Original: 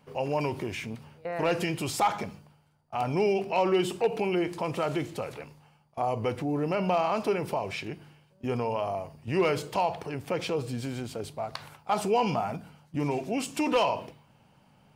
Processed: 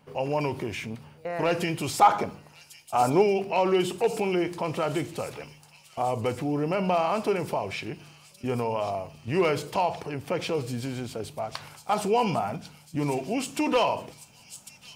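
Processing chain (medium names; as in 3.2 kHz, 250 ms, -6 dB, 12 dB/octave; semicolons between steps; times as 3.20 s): time-frequency box 2.02–3.22 s, 250–1600 Hz +6 dB; feedback echo behind a high-pass 1100 ms, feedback 65%, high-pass 5.4 kHz, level -5 dB; trim +1.5 dB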